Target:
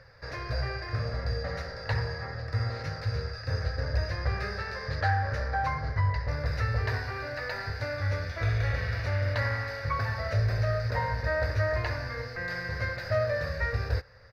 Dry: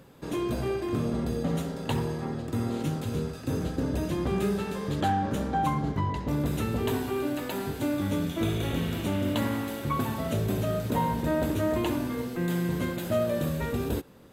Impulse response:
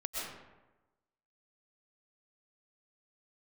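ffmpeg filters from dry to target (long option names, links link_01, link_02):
-af "firequalizer=gain_entry='entry(110,0);entry(170,-24);entry(330,-27);entry(500,-5);entry(900,-10);entry(1800,6);entry(3200,-21);entry(4800,6);entry(7300,-27)':delay=0.05:min_phase=1,volume=5.5dB"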